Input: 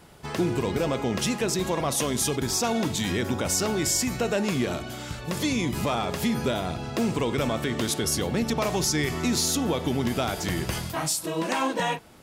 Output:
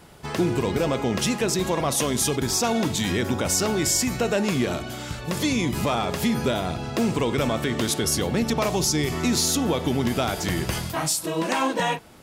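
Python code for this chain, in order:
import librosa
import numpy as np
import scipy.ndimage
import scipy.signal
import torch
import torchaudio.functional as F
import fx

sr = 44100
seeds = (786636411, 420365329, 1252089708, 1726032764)

y = fx.peak_eq(x, sr, hz=1700.0, db=-7.0, octaves=0.77, at=(8.69, 9.12))
y = y * librosa.db_to_amplitude(2.5)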